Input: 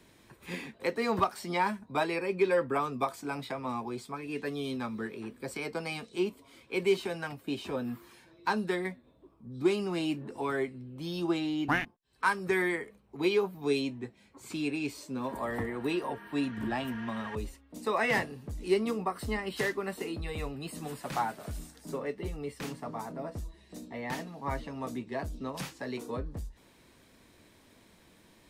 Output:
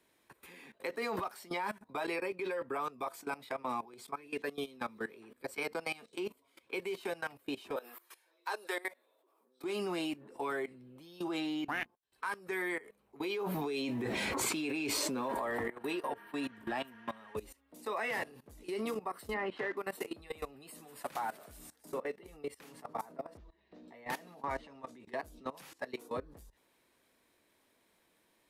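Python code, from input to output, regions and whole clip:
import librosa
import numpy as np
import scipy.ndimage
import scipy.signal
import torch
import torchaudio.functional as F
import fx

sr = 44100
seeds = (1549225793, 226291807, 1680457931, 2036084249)

y = fx.chain(x, sr, fx.highpass(hz=420.0, slope=24),
    fx.high_shelf(hz=5400.0, db=7.0), at=(7.76, 9.64))
y = fx.chain(y, sr, fx.block_float(bits=7),
    fx.high_shelf(hz=9300.0, db=-10.0),
    fx.env_flatten(amount_pct=100), at=(13.38, 15.68))
y = fx.chain(y, sr, fx.block_float(bits=5),
    fx.bandpass_edges(low_hz=110.0, high_hz=2100.0),
    fx.env_flatten(amount_pct=50), at=(19.34, 19.77))
y = fx.chain(y, sr, fx.median_filter(points=5),
    fx.air_absorb(metres=210.0), at=(23.37, 23.88))
y = fx.chain(y, sr, fx.lowpass(hz=7100.0, slope=12),
    fx.transient(attack_db=-6, sustain_db=7), at=(24.43, 25.0))
y = fx.bass_treble(y, sr, bass_db=-12, treble_db=-5)
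y = fx.level_steps(y, sr, step_db=19)
y = fx.peak_eq(y, sr, hz=12000.0, db=11.0, octaves=0.77)
y = F.gain(torch.from_numpy(y), 2.5).numpy()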